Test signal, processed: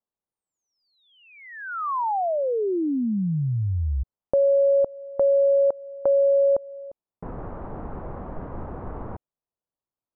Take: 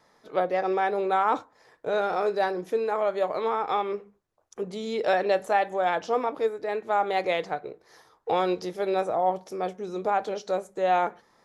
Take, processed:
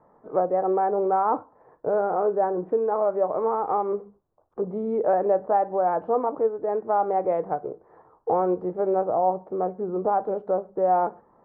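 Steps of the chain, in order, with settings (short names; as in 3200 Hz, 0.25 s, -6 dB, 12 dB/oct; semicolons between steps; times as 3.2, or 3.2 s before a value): LPF 1100 Hz 24 dB/oct; in parallel at 0 dB: compressor 12:1, threshold -30 dBFS; on the sum: short-mantissa float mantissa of 8-bit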